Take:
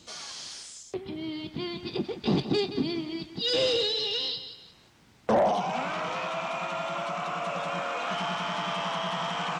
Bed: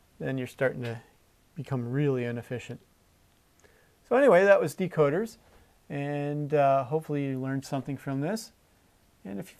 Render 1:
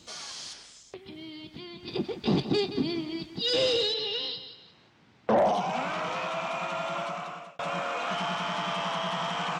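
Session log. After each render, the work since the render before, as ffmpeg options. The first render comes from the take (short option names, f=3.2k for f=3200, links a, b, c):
-filter_complex "[0:a]asettb=1/sr,asplit=3[a][b][c];[a]atrim=end=0.534[d];[b]atrim=start=0.53:end=1.88,asetpts=PTS-STARTPTS,afade=t=in:d=0.004:c=qsin,afade=t=out:st=1.346:d=0.004:c=qsin,acrossover=split=1700|5000[e][f][g];[e]acompressor=threshold=-43dB:ratio=4[h];[f]acompressor=threshold=-48dB:ratio=4[i];[g]acompressor=threshold=-60dB:ratio=4[j];[h][i][j]amix=inputs=3:normalize=0[k];[c]atrim=start=1.876[l];[d][k]acrossfade=d=0.004:c1=hsin:c2=qsin[m];[m][l]acrossfade=d=0.004:c1=qsin:c2=hsin,asettb=1/sr,asplit=3[n][o][p];[n]atrim=end=3.944[q];[o]atrim=start=3.94:end=5.38,asetpts=PTS-STARTPTS,afade=t=in:d=0.004:c=qsin,afade=t=out:st=1.436:d=0.004:c=qsin,highpass=100,lowpass=4k[r];[p]atrim=start=5.376[s];[q][r]acrossfade=d=0.004:c1=hsin:c2=qsin[t];[t][s]acrossfade=d=0.004:c1=qsin:c2=hsin,asplit=2[u][v];[u]atrim=end=7.59,asetpts=PTS-STARTPTS,afade=t=out:st=7:d=0.59[w];[v]atrim=start=7.59,asetpts=PTS-STARTPTS,afade=t=in:d=0.004:c=hsin[x];[w][x]concat=n=2:v=0:a=1"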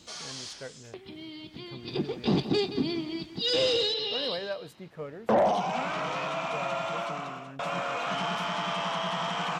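-filter_complex "[1:a]volume=-15.5dB[a];[0:a][a]amix=inputs=2:normalize=0"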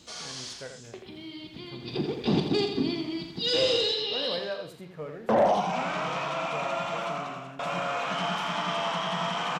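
-filter_complex "[0:a]asplit=2[a][b];[b]adelay=40,volume=-11dB[c];[a][c]amix=inputs=2:normalize=0,aecho=1:1:84:0.447"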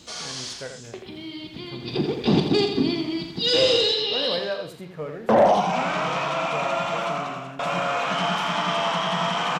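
-af "volume=5.5dB"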